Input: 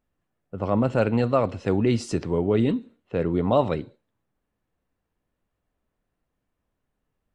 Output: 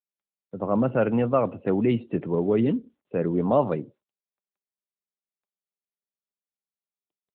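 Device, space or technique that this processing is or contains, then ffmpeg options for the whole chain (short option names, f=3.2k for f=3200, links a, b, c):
mobile call with aggressive noise cancelling: -af "highpass=f=120:w=0.5412,highpass=f=120:w=1.3066,afftdn=nr=23:nf=-42" -ar 8000 -c:a libopencore_amrnb -b:a 12200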